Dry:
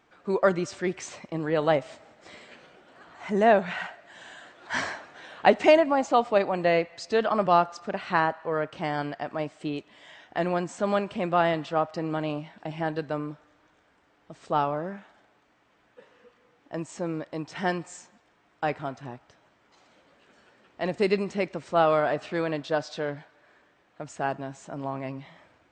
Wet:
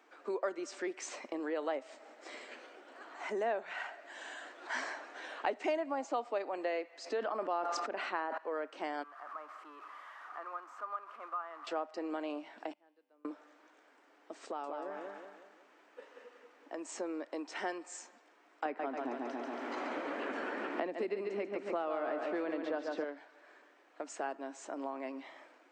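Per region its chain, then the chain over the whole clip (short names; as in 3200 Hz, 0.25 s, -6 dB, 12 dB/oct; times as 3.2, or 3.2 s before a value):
6.98–8.38 high shelf 3400 Hz -7.5 dB + sustainer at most 31 dB/s
9.03–11.67 zero-crossing step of -29.5 dBFS + band-pass 1200 Hz, Q 9.3
12.72–13.25 flipped gate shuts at -33 dBFS, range -33 dB + resonator 99 Hz, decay 1.8 s, mix 50%
14.45–16.85 compressor 2:1, threshold -38 dBFS + feedback echo 0.185 s, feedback 42%, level -5 dB
18.65–23.04 tone controls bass +12 dB, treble -10 dB + feedback echo 0.14 s, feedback 47%, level -7 dB + three-band squash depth 100%
whole clip: steep high-pass 260 Hz 48 dB/oct; bell 3500 Hz -3.5 dB 0.55 oct; compressor 2.5:1, threshold -39 dBFS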